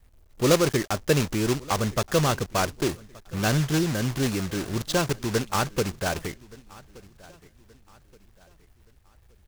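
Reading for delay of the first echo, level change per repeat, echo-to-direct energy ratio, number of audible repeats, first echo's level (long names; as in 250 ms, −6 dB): 1,174 ms, −8.5 dB, −22.0 dB, 2, −22.5 dB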